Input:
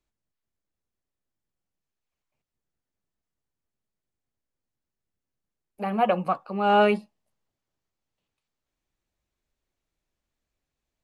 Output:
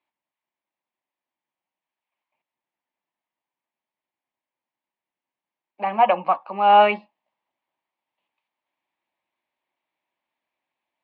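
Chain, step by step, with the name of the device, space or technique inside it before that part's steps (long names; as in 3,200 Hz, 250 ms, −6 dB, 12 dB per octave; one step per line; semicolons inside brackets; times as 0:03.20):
phone earpiece (loudspeaker in its box 400–3,300 Hz, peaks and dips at 440 Hz −10 dB, 930 Hz +8 dB, 1,400 Hz −7 dB, 2,200 Hz +3 dB)
level +5.5 dB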